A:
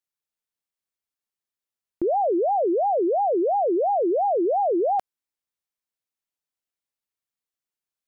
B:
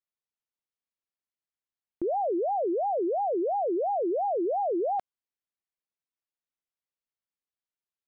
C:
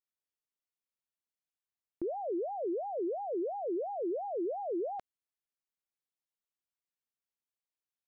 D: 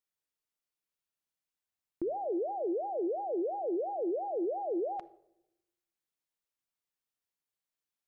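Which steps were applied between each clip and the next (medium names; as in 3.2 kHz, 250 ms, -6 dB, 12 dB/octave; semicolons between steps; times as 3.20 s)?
distance through air 120 m; trim -5.5 dB
dynamic bell 790 Hz, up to -6 dB, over -43 dBFS, Q 1.6; trim -5 dB
simulated room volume 2700 m³, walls furnished, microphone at 0.49 m; trim +1.5 dB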